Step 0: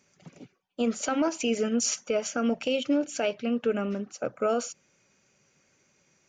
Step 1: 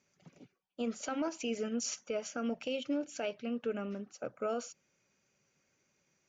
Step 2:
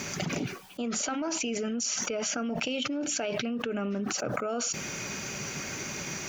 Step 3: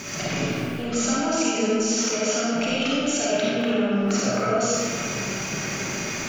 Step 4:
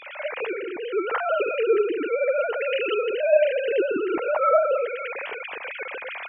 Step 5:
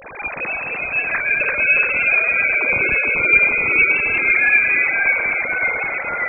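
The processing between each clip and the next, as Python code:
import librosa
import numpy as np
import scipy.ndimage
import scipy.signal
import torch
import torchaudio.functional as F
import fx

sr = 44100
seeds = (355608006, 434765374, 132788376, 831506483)

y1 = scipy.signal.sosfilt(scipy.signal.butter(4, 7500.0, 'lowpass', fs=sr, output='sos'), x)
y1 = F.gain(torch.from_numpy(y1), -9.0).numpy()
y2 = fx.peak_eq(y1, sr, hz=520.0, db=-7.0, octaves=0.23)
y2 = fx.env_flatten(y2, sr, amount_pct=100)
y3 = fx.rev_freeverb(y2, sr, rt60_s=2.4, hf_ratio=0.6, predelay_ms=10, drr_db=-7.5)
y4 = fx.sine_speech(y3, sr)
y5 = fx.freq_invert(y4, sr, carrier_hz=3000)
y5 = fx.echo_pitch(y5, sr, ms=271, semitones=-1, count=3, db_per_echo=-3.0)
y5 = F.gain(torch.from_numpy(y5), 3.5).numpy()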